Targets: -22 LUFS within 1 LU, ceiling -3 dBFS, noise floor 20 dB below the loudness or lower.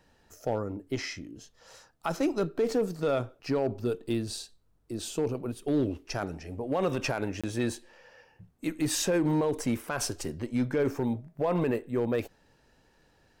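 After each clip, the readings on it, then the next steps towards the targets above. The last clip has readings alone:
clipped samples 0.7%; clipping level -20.0 dBFS; dropouts 1; longest dropout 26 ms; loudness -31.0 LUFS; peak level -20.0 dBFS; loudness target -22.0 LUFS
-> clip repair -20 dBFS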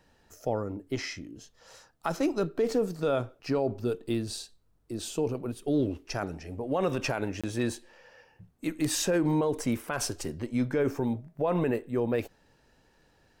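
clipped samples 0.0%; dropouts 1; longest dropout 26 ms
-> interpolate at 7.41 s, 26 ms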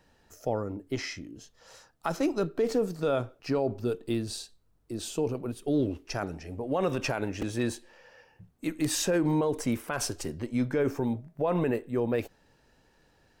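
dropouts 0; loudness -30.5 LUFS; peak level -12.0 dBFS; loudness target -22.0 LUFS
-> trim +8.5 dB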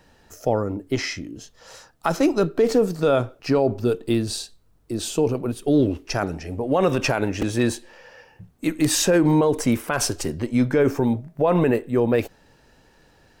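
loudness -22.0 LUFS; peak level -3.5 dBFS; noise floor -57 dBFS

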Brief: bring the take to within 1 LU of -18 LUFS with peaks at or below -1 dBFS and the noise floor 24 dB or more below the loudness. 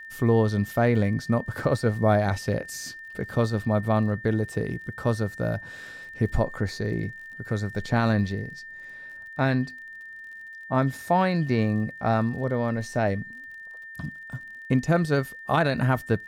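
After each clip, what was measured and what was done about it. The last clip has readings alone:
tick rate 40 per s; steady tone 1.8 kHz; tone level -39 dBFS; loudness -26.0 LUFS; peak level -9.5 dBFS; loudness target -18.0 LUFS
-> de-click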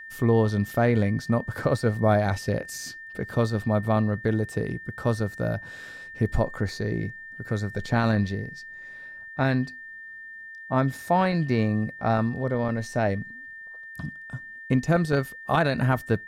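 tick rate 0.061 per s; steady tone 1.8 kHz; tone level -39 dBFS
-> band-stop 1.8 kHz, Q 30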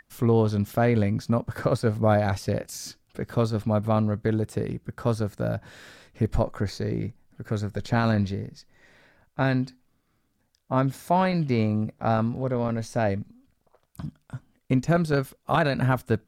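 steady tone not found; loudness -26.0 LUFS; peak level -9.5 dBFS; loudness target -18.0 LUFS
-> trim +8 dB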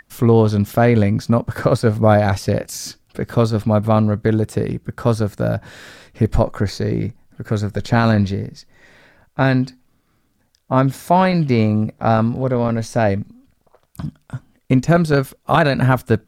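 loudness -18.0 LUFS; peak level -1.5 dBFS; noise floor -63 dBFS

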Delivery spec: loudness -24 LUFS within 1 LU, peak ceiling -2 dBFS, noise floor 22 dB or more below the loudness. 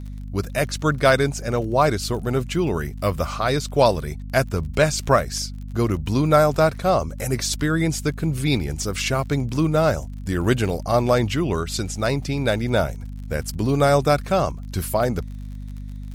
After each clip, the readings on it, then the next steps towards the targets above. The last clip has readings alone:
tick rate 44 per s; hum 50 Hz; highest harmonic 250 Hz; hum level -30 dBFS; loudness -22.0 LUFS; peak level -3.0 dBFS; loudness target -24.0 LUFS
-> de-click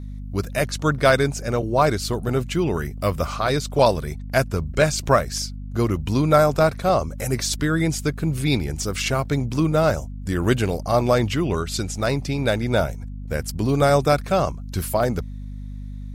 tick rate 0.50 per s; hum 50 Hz; highest harmonic 250 Hz; hum level -31 dBFS
-> de-hum 50 Hz, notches 5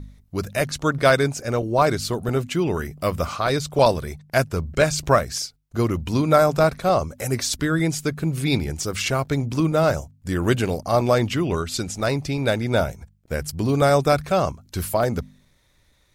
hum not found; loudness -22.0 LUFS; peak level -3.0 dBFS; loudness target -24.0 LUFS
-> trim -2 dB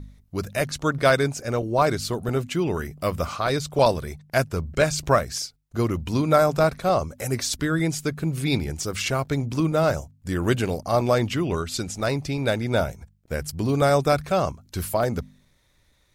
loudness -24.0 LUFS; peak level -5.0 dBFS; noise floor -63 dBFS

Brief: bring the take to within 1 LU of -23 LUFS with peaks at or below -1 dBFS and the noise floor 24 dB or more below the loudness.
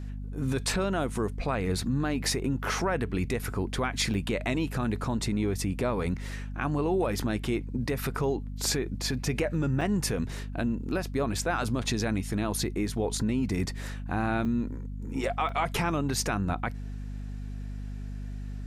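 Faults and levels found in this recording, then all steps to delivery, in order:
dropouts 4; longest dropout 3.4 ms; hum 50 Hz; highest harmonic 250 Hz; hum level -34 dBFS; loudness -30.0 LUFS; peak level -15.0 dBFS; loudness target -23.0 LUFS
-> interpolate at 4.14/9.81/14.45/15.49 s, 3.4 ms; de-hum 50 Hz, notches 5; trim +7 dB

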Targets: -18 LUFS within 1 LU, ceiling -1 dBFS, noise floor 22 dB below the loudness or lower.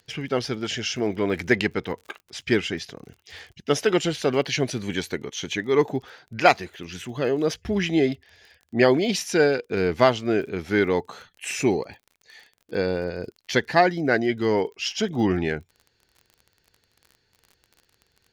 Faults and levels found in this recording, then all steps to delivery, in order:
tick rate 36 per s; loudness -24.0 LUFS; peak level -3.5 dBFS; loudness target -18.0 LUFS
-> de-click; trim +6 dB; peak limiter -1 dBFS

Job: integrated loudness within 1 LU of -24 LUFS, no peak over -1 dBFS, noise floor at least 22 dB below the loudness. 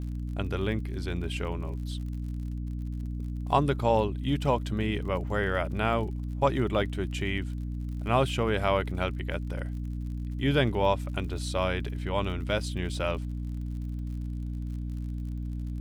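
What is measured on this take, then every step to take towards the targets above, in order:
tick rate 55 per s; hum 60 Hz; highest harmonic 300 Hz; hum level -31 dBFS; loudness -30.5 LUFS; peak level -9.5 dBFS; loudness target -24.0 LUFS
-> de-click; hum notches 60/120/180/240/300 Hz; trim +6.5 dB

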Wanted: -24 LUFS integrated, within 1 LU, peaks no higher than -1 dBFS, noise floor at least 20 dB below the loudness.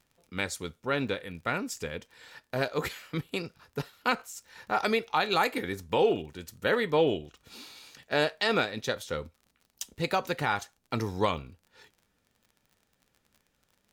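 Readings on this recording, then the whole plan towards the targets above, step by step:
tick rate 38 per s; loudness -30.5 LUFS; peak level -13.0 dBFS; loudness target -24.0 LUFS
-> de-click; trim +6.5 dB

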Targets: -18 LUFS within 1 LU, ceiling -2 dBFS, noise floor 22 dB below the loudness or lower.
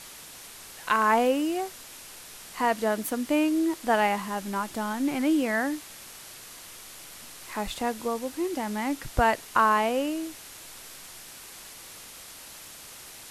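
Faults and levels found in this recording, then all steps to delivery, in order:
noise floor -46 dBFS; noise floor target -49 dBFS; loudness -26.5 LUFS; peak level -8.5 dBFS; loudness target -18.0 LUFS
-> noise reduction 6 dB, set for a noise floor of -46 dBFS; trim +8.5 dB; peak limiter -2 dBFS

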